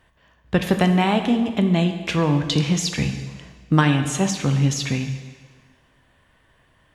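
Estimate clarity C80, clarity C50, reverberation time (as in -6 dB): 9.5 dB, 8.0 dB, 1.5 s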